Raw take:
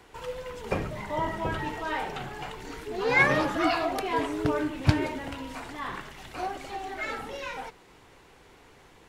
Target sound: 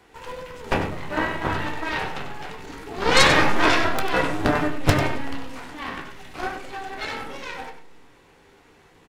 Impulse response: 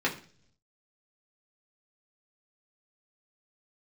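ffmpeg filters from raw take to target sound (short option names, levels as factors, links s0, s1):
-filter_complex "[0:a]aeval=exprs='0.531*(cos(1*acos(clip(val(0)/0.531,-1,1)))-cos(1*PI/2))+0.266*(cos(8*acos(clip(val(0)/0.531,-1,1)))-cos(8*PI/2))':c=same,aecho=1:1:95:0.335,asplit=2[s0][s1];[1:a]atrim=start_sample=2205,adelay=13[s2];[s1][s2]afir=irnorm=-1:irlink=0,volume=0.251[s3];[s0][s3]amix=inputs=2:normalize=0,volume=0.794"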